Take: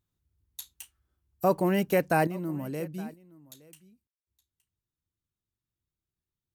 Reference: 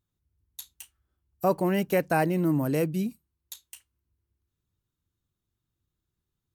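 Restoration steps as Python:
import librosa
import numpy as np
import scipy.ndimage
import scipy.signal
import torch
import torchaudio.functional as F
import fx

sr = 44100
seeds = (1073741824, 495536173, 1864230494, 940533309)

y = fx.fix_ambience(x, sr, seeds[0], print_start_s=0.0, print_end_s=0.5, start_s=4.07, end_s=4.27)
y = fx.fix_echo_inverse(y, sr, delay_ms=868, level_db=-22.0)
y = fx.fix_level(y, sr, at_s=2.27, step_db=8.5)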